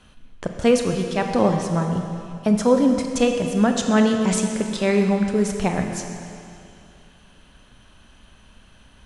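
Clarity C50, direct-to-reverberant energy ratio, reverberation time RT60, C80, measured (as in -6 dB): 5.0 dB, 3.5 dB, 2.6 s, 5.5 dB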